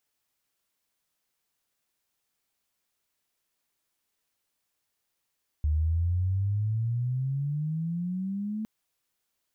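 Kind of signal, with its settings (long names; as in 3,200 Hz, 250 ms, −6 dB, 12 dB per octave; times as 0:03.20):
glide logarithmic 74 Hz → 220 Hz −22 dBFS → −29.5 dBFS 3.01 s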